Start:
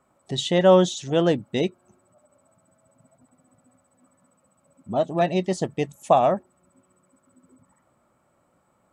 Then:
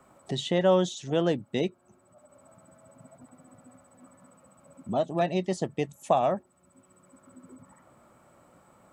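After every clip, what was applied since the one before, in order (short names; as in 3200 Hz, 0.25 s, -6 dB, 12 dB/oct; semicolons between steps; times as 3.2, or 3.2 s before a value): three-band squash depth 40%; gain -4.5 dB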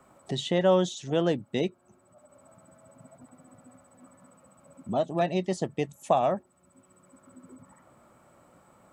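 nothing audible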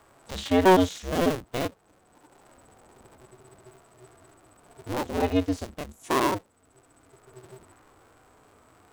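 cycle switcher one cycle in 2, inverted; harmonic-percussive split percussive -13 dB; gain +5 dB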